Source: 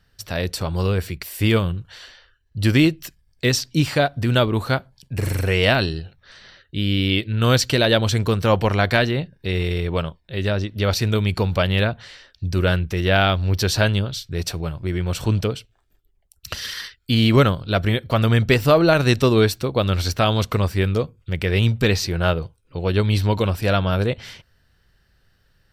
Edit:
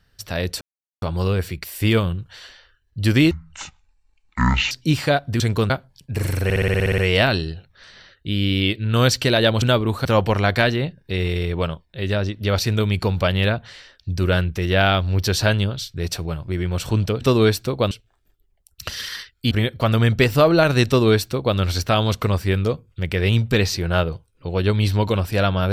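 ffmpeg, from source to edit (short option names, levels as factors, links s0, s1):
-filter_complex "[0:a]asplit=20[s0][s1][s2][s3][s4][s5][s6][s7][s8][s9][s10][s11][s12][s13][s14][s15][s16][s17][s18][s19];[s0]atrim=end=0.61,asetpts=PTS-STARTPTS,afade=t=out:st=0.606:d=0.004:c=hsin,apad=pad_dur=0.41[s20];[s1]atrim=start=0.61:end=2.904,asetpts=PTS-STARTPTS,afade=t=in:d=0.004:c=hsin[s21];[s2]atrim=start=2.9:end=3.6,asetpts=PTS-STARTPTS,asetrate=22050,aresample=44100[s22];[s3]atrim=start=3.596:end=4.292[s23];[s4]atrim=start=8.098:end=8.402[s24];[s5]atrim=start=4.718:end=5.522[s25];[s6]atrim=start=5.458:end=5.522[s26];[s7]atrim=start=5.458:end=5.522[s27];[s8]atrim=start=5.458:end=5.522[s28];[s9]atrim=start=5.458:end=5.522[s29];[s10]atrim=start=5.458:end=5.522[s30];[s11]atrim=start=5.458:end=5.522[s31];[s12]atrim=start=5.458:end=5.522[s32];[s13]atrim=start=5.458:end=5.522[s33];[s14]atrim=start=5.458:end=8.102[s34];[s15]atrim=start=4.288:end=4.722[s35];[s16]atrim=start=8.398:end=15.562[s36];[s17]atrim=start=19.168:end=19.872[s37];[s18]atrim=start=15.558:end=17.162[s38];[s19]atrim=start=17.808[s39];[s20][s21]concat=n=2:v=0:a=1[s40];[s40][s22]acrossfade=d=0.004:c1=hsin:c2=hsin[s41];[s41][s23]acrossfade=d=0.004:c1=hsin:c2=hsin[s42];[s42][s24]acrossfade=d=0.004:c1=hsin:c2=hsin[s43];[s43][s25]acrossfade=d=0.004:c1=hsin:c2=hsin[s44];[s44][s26]acrossfade=d=0.004:c1=hsin:c2=hsin[s45];[s45][s27]acrossfade=d=0.004:c1=hsin:c2=hsin[s46];[s46][s28]acrossfade=d=0.004:c1=hsin:c2=hsin[s47];[s47][s29]acrossfade=d=0.004:c1=hsin:c2=hsin[s48];[s48][s30]acrossfade=d=0.004:c1=hsin:c2=hsin[s49];[s49][s31]acrossfade=d=0.004:c1=hsin:c2=hsin[s50];[s50][s32]acrossfade=d=0.004:c1=hsin:c2=hsin[s51];[s51][s33]acrossfade=d=0.004:c1=hsin:c2=hsin[s52];[s52][s34]acrossfade=d=0.004:c1=hsin:c2=hsin[s53];[s53][s35]acrossfade=d=0.004:c1=hsin:c2=hsin[s54];[s54][s36]acrossfade=d=0.004:c1=hsin:c2=hsin[s55];[s55][s37]acrossfade=d=0.004:c1=hsin:c2=hsin[s56];[s56][s38]acrossfade=d=0.004:c1=hsin:c2=hsin[s57];[s57][s39]acrossfade=d=0.004:c1=hsin:c2=hsin"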